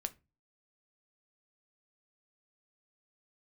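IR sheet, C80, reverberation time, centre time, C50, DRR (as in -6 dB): 28.0 dB, 0.25 s, 3 ms, 21.5 dB, 9.0 dB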